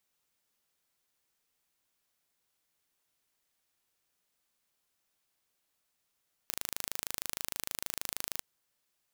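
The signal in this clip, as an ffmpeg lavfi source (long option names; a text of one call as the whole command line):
ffmpeg -f lavfi -i "aevalsrc='0.422*eq(mod(n,1670),0)':duration=1.91:sample_rate=44100" out.wav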